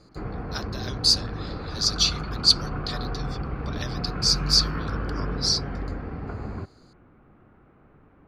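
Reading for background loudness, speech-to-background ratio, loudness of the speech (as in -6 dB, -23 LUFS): -32.5 LUFS, 10.0 dB, -22.5 LUFS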